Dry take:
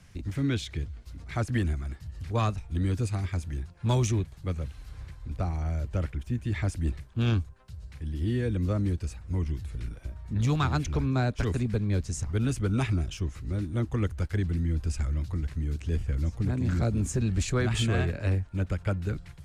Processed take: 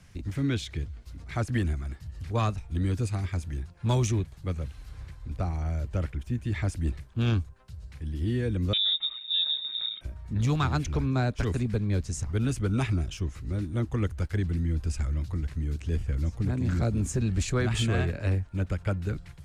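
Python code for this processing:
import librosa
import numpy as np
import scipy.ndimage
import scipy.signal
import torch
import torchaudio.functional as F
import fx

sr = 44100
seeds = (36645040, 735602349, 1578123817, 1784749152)

y = fx.freq_invert(x, sr, carrier_hz=3700, at=(8.73, 10.01))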